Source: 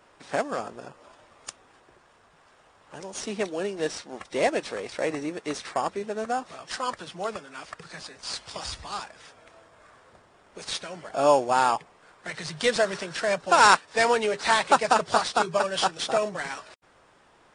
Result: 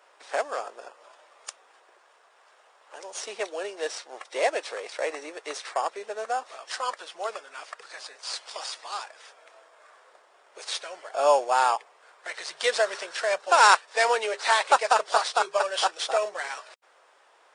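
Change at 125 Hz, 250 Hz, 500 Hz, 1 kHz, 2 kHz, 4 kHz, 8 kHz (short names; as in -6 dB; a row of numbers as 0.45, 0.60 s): under -30 dB, -15.0 dB, -1.5 dB, 0.0 dB, 0.0 dB, 0.0 dB, 0.0 dB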